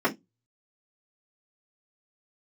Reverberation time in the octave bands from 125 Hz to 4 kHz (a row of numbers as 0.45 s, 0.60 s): 0.35 s, 0.20 s, 0.20 s, 0.15 s, 0.15 s, 0.15 s